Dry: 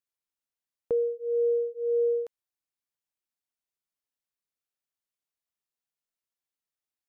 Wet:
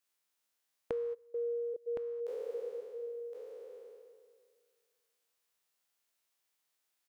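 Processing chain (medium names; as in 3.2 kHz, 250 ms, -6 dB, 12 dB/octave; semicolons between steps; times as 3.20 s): spectral sustain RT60 1.90 s; bass shelf 280 Hz -11.5 dB; compression 3:1, threshold -46 dBFS, peak gain reduction 14.5 dB; 1.13–1.86 s: trance gate "xxxxx..." 179 bpm -24 dB; delay 1065 ms -7 dB; trim +6.5 dB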